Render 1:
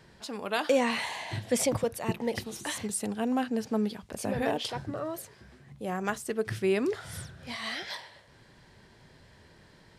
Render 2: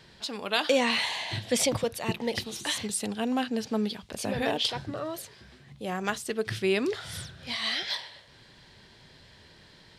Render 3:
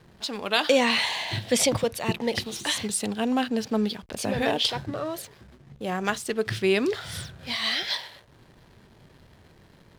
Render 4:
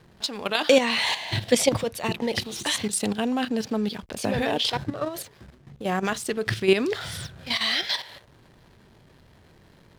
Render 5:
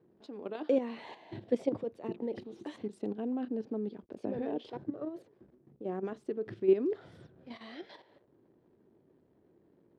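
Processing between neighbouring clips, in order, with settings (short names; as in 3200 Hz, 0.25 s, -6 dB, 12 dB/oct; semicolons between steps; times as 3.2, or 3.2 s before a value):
bell 3700 Hz +9.5 dB 1.3 oct
backlash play -47 dBFS; gain +3.5 dB
level quantiser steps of 10 dB; gain +5.5 dB
band-pass 340 Hz, Q 2.2; gain -3.5 dB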